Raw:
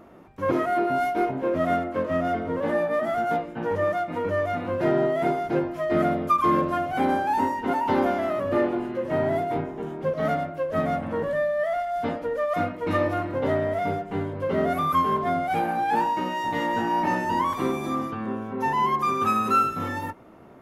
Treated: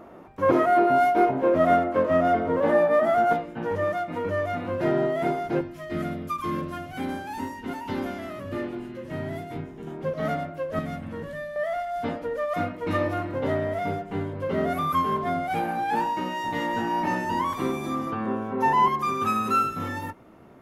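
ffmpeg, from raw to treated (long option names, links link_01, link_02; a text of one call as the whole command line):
ffmpeg -i in.wav -af "asetnsamples=nb_out_samples=441:pad=0,asendcmd='3.33 equalizer g -2;5.61 equalizer g -12.5;9.87 equalizer g -3.5;10.79 equalizer g -12;11.56 equalizer g -2.5;18.07 equalizer g 4;18.88 equalizer g -3',equalizer=frequency=720:width_type=o:width=2.5:gain=5" out.wav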